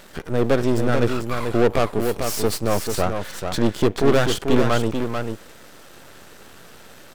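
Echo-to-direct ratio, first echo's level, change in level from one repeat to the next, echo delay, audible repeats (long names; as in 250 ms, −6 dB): −6.0 dB, −6.0 dB, repeats not evenly spaced, 440 ms, 1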